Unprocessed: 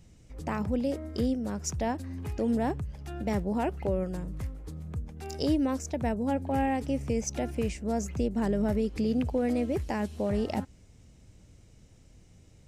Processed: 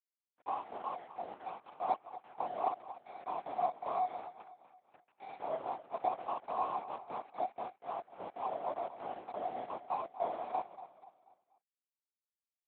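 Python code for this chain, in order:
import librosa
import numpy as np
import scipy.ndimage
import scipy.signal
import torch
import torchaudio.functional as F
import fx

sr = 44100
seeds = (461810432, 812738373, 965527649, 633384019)

y = fx.lower_of_two(x, sr, delay_ms=8.0)
y = fx.formant_cascade(y, sr, vowel='a')
y = np.sign(y) * np.maximum(np.abs(y) - 10.0 ** (-60.0 / 20.0), 0.0)
y = fx.echo_feedback(y, sr, ms=243, feedback_pct=41, wet_db=-14)
y = fx.lpc_vocoder(y, sr, seeds[0], excitation='whisper', order=8)
y = scipy.signal.sosfilt(scipy.signal.butter(2, 340.0, 'highpass', fs=sr, output='sos'), y)
y = y * librosa.db_to_amplitude(8.5)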